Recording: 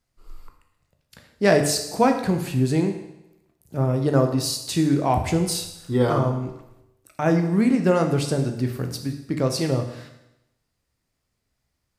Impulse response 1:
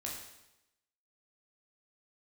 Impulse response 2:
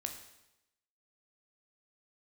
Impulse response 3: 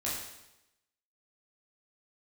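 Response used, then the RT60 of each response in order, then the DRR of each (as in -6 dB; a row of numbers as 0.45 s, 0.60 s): 2; 0.90 s, 0.90 s, 0.90 s; -3.0 dB, 4.5 dB, -7.5 dB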